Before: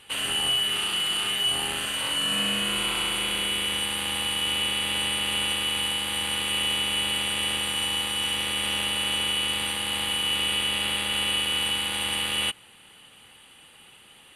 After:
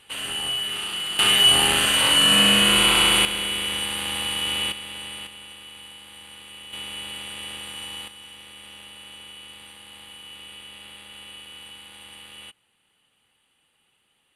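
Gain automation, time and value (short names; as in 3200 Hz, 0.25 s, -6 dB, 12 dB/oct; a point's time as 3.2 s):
-2.5 dB
from 1.19 s +9.5 dB
from 3.25 s +0.5 dB
from 4.72 s -9 dB
from 5.27 s -16 dB
from 6.73 s -8.5 dB
from 8.08 s -16.5 dB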